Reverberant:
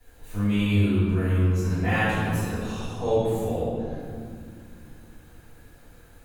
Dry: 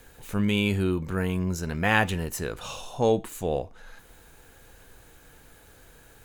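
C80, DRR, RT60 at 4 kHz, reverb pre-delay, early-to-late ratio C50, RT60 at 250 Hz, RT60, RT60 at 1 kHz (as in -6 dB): -1.0 dB, -19.0 dB, 1.3 s, 3 ms, -3.0 dB, 3.7 s, 2.4 s, 2.1 s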